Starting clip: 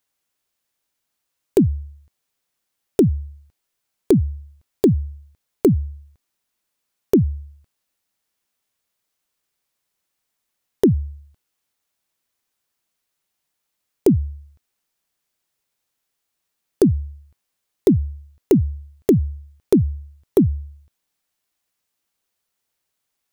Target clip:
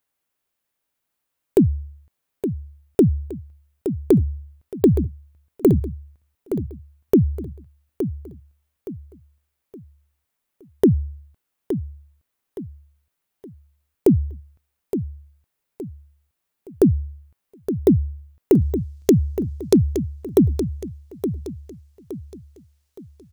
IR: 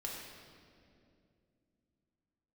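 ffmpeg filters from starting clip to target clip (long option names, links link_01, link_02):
-af "asetnsamples=nb_out_samples=441:pad=0,asendcmd='18.62 equalizer g 10;19.76 equalizer g 4',equalizer=frequency=5600:width_type=o:width=1.7:gain=-6.5,aecho=1:1:868|1736|2604|3472:0.335|0.124|0.0459|0.017"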